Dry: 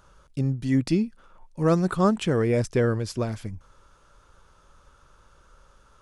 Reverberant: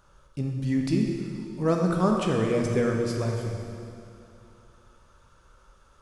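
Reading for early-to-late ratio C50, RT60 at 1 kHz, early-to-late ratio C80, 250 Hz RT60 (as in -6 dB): 2.0 dB, 2.5 s, 3.0 dB, 2.9 s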